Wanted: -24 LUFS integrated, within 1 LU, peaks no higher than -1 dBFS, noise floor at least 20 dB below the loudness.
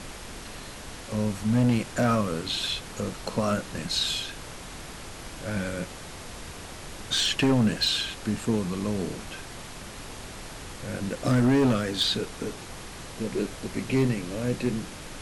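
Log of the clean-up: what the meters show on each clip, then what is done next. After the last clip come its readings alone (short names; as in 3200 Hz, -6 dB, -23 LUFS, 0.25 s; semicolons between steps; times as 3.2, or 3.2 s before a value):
clipped 1.0%; flat tops at -17.0 dBFS; noise floor -41 dBFS; noise floor target -47 dBFS; loudness -27.0 LUFS; peak -17.0 dBFS; loudness target -24.0 LUFS
-> clip repair -17 dBFS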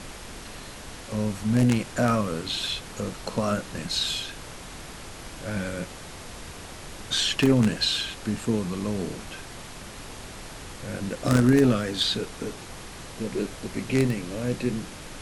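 clipped 0.0%; noise floor -41 dBFS; noise floor target -46 dBFS
-> noise print and reduce 6 dB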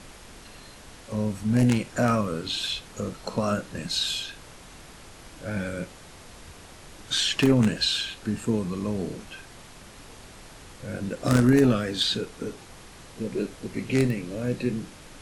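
noise floor -47 dBFS; loudness -26.0 LUFS; peak -8.0 dBFS; loudness target -24.0 LUFS
-> gain +2 dB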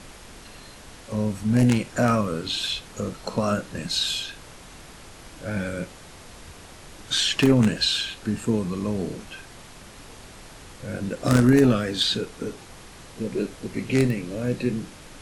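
loudness -24.0 LUFS; peak -6.0 dBFS; noise floor -45 dBFS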